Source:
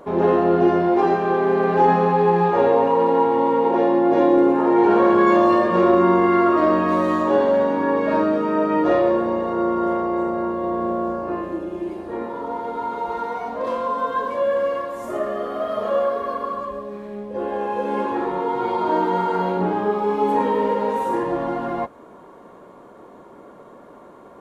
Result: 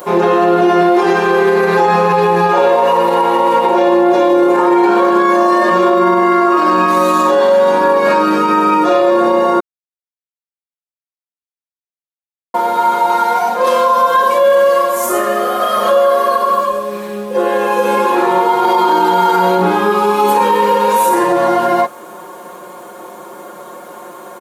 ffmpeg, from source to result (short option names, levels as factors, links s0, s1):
-filter_complex "[0:a]asplit=3[s0][s1][s2];[s0]atrim=end=9.6,asetpts=PTS-STARTPTS,afade=t=out:st=9.596:d=0.004:c=hsin[s3];[s1]atrim=start=9.6:end=12.54,asetpts=PTS-STARTPTS,volume=0[s4];[s2]atrim=start=12.54,asetpts=PTS-STARTPTS,afade=t=in:d=0.004:c=hsin[s5];[s3][s4][s5]concat=n=3:v=0:a=1,aemphasis=mode=production:type=riaa,aecho=1:1:5.6:0.92,alimiter=level_in=4.73:limit=0.891:release=50:level=0:latency=1,volume=0.75"